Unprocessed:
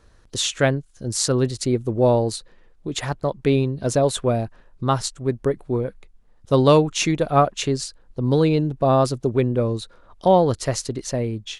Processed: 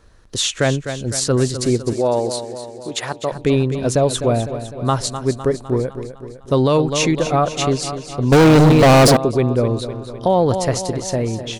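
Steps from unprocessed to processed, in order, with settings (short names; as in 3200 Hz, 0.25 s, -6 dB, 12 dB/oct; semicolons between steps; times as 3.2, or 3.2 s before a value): feedback echo 0.253 s, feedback 57%, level -11.5 dB; 8.32–9.17 sample leveller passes 5; limiter -10.5 dBFS, peak gain reduction 7 dB; 1.93–3.32 HPF 390 Hz 6 dB/oct; gain +3.5 dB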